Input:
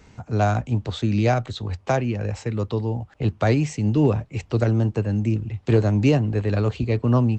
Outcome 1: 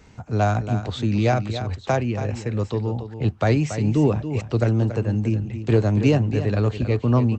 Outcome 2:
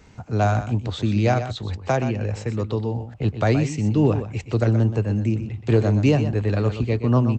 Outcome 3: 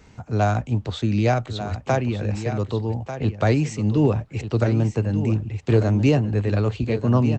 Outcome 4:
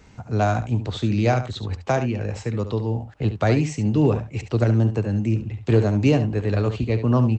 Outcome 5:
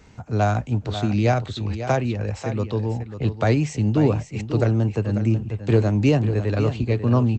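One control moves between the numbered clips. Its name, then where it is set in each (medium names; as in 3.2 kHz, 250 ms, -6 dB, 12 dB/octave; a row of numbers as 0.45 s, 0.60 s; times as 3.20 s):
delay, time: 281 ms, 124 ms, 1192 ms, 71 ms, 543 ms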